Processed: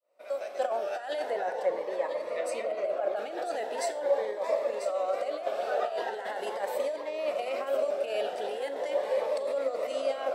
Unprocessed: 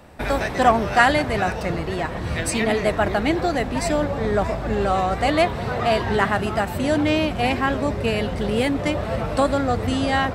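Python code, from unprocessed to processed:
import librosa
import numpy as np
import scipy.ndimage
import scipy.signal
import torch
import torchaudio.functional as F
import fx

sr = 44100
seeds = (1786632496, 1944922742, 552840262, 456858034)

y = fx.fade_in_head(x, sr, length_s=1.43)
y = fx.high_shelf(y, sr, hz=2200.0, db=-11.5, at=(1.3, 3.16))
y = fx.over_compress(y, sr, threshold_db=-23.0, ratio=-0.5)
y = fx.ladder_highpass(y, sr, hz=510.0, resonance_pct=70)
y = y + 10.0 ** (-9.5 / 20.0) * np.pad(y, (int(993 * sr / 1000.0), 0))[:len(y)]
y = fx.rev_schroeder(y, sr, rt60_s=0.4, comb_ms=26, drr_db=12.5)
y = fx.notch_cascade(y, sr, direction='rising', hz=0.41)
y = y * 10.0 ** (2.0 / 20.0)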